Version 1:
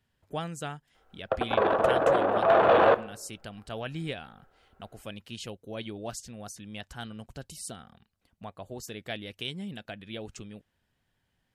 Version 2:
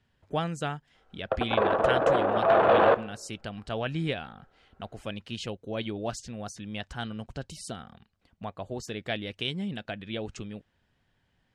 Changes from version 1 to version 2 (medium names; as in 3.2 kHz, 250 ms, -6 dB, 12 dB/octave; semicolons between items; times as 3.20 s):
speech +5.0 dB; master: add distance through air 71 m